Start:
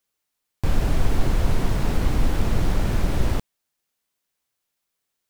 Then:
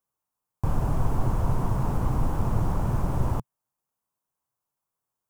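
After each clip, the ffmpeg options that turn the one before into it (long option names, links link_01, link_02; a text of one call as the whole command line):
ffmpeg -i in.wav -af "equalizer=frequency=125:width_type=o:width=1:gain=9,equalizer=frequency=1000:width_type=o:width=1:gain=11,equalizer=frequency=2000:width_type=o:width=1:gain=-8,equalizer=frequency=4000:width_type=o:width=1:gain=-10,volume=-6.5dB" out.wav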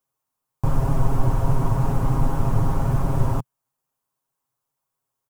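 ffmpeg -i in.wav -af "aecho=1:1:7.4:0.65,volume=2.5dB" out.wav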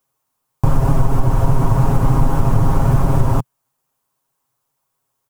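ffmpeg -i in.wav -af "acompressor=threshold=-16dB:ratio=6,volume=8.5dB" out.wav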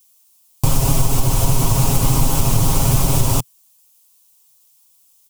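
ffmpeg -i in.wav -af "aexciter=amount=5:drive=8.1:freq=2400,volume=-2dB" out.wav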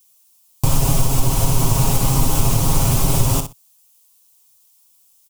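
ffmpeg -i in.wav -af "aecho=1:1:61|122:0.355|0.0568,volume=-1dB" out.wav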